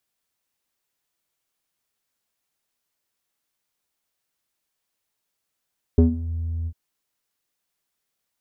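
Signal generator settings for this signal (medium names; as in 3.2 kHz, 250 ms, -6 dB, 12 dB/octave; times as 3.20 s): synth note square E2 12 dB/octave, low-pass 130 Hz, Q 5.9, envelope 1.5 oct, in 0.32 s, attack 2.3 ms, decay 0.12 s, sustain -17 dB, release 0.06 s, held 0.69 s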